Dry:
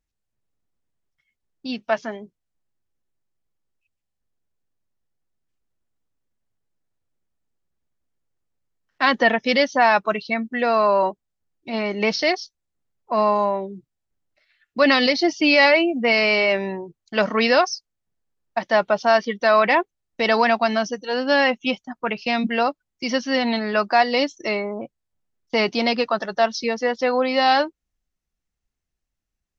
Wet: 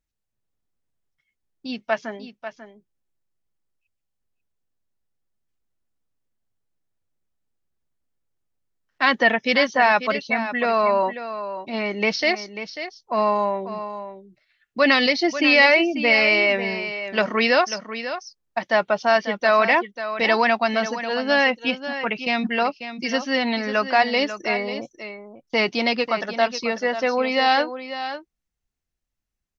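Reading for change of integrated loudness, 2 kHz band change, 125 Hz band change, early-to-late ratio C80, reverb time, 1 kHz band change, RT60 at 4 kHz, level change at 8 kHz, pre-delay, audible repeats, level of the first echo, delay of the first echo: -0.5 dB, +1.5 dB, no reading, no reverb, no reverb, -1.0 dB, no reverb, no reading, no reverb, 1, -11.0 dB, 542 ms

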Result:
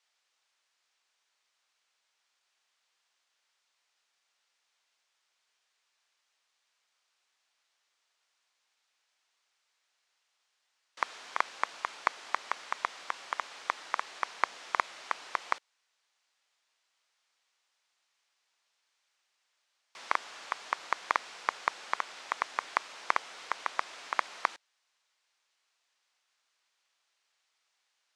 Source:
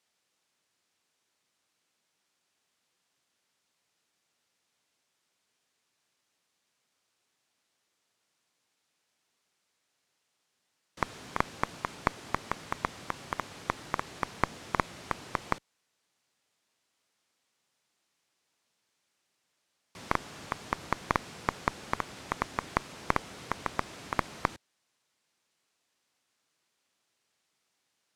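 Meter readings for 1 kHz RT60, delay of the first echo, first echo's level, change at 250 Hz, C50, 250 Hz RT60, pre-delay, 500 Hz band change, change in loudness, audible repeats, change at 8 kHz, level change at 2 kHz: no reverb, no echo, no echo, -16.5 dB, no reverb, no reverb, no reverb, -5.5 dB, +0.5 dB, no echo, -1.0 dB, +2.0 dB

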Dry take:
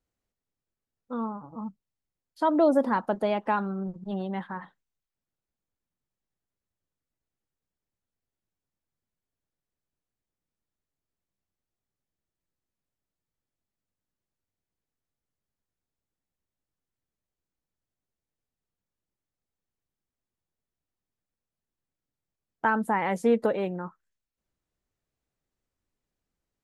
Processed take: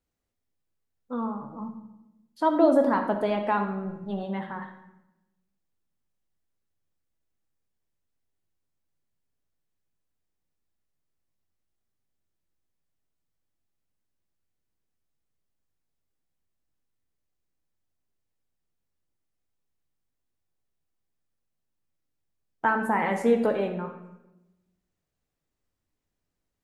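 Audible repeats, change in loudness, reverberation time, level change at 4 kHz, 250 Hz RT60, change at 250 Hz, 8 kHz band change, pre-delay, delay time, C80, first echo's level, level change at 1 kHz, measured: no echo, +1.5 dB, 0.95 s, +1.0 dB, 1.2 s, +1.5 dB, no reading, 3 ms, no echo, 10.0 dB, no echo, +1.0 dB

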